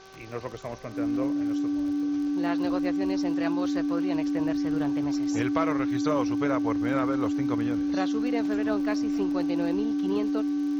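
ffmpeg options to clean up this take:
-af "adeclick=t=4,bandreject=f=383.6:t=h:w=4,bandreject=f=767.2:t=h:w=4,bandreject=f=1.1508k:t=h:w=4,bandreject=f=1.5344k:t=h:w=4,bandreject=f=290:w=30,afwtdn=0.0028"

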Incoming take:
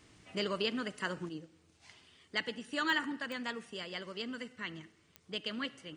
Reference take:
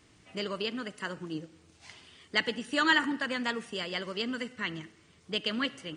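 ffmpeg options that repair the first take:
-af "adeclick=t=4,asetnsamples=n=441:p=0,asendcmd='1.29 volume volume 7dB',volume=0dB"

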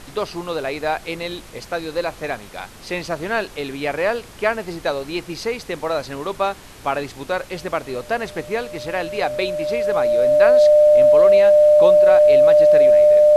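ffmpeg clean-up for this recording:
-af "bandreject=f=600:w=30,afftdn=nr=21:nf=-40"

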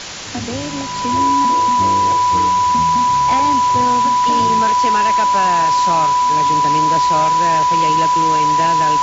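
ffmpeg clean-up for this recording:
-af "bandreject=f=990:w=30,afwtdn=0.056"

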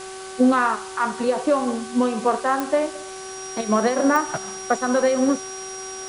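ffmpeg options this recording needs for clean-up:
-af "adeclick=t=4,bandreject=f=379.9:t=h:w=4,bandreject=f=759.8:t=h:w=4,bandreject=f=1.1397k:t=h:w=4,bandreject=f=1.5196k:t=h:w=4,bandreject=f=5.7k:w=30,afftdn=nr=30:nf=-35"

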